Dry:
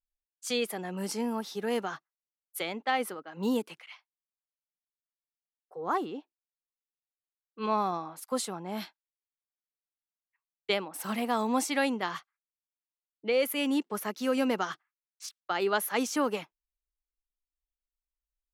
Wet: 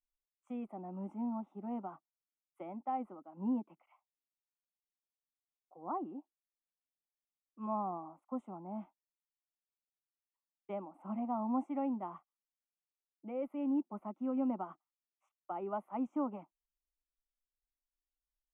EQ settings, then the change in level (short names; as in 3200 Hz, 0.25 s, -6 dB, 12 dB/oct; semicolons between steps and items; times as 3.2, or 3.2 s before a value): Butterworth band-stop 4500 Hz, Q 0.57; tape spacing loss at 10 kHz 42 dB; fixed phaser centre 450 Hz, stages 6; -3.0 dB